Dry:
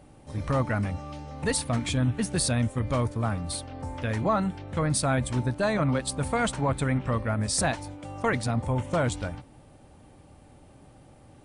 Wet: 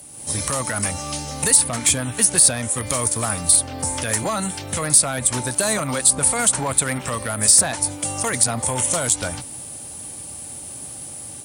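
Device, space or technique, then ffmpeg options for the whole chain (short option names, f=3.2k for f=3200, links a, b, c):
FM broadcast chain: -filter_complex "[0:a]highpass=71,dynaudnorm=f=120:g=3:m=7.5dB,acrossover=split=400|2100|5800[a][b][c][d];[a]acompressor=threshold=-28dB:ratio=4[e];[b]acompressor=threshold=-22dB:ratio=4[f];[c]acompressor=threshold=-44dB:ratio=4[g];[d]acompressor=threshold=-42dB:ratio=4[h];[e][f][g][h]amix=inputs=4:normalize=0,aemphasis=mode=production:type=75fm,alimiter=limit=-15.5dB:level=0:latency=1:release=89,asoftclip=type=hard:threshold=-19dB,lowpass=f=15k:w=0.5412,lowpass=f=15k:w=1.3066,aemphasis=mode=production:type=75fm,volume=2.5dB"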